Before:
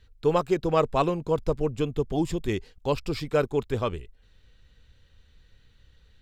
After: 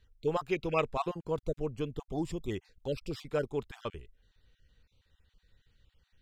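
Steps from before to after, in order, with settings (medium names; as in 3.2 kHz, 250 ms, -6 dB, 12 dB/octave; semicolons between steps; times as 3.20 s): random holes in the spectrogram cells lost 21%; 0.49–0.90 s: peaking EQ 2.5 kHz +13 dB 0.73 oct; trim -8 dB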